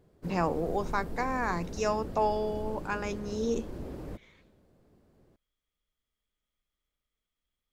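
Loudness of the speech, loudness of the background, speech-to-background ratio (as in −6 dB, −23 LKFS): −32.0 LKFS, −42.0 LKFS, 10.0 dB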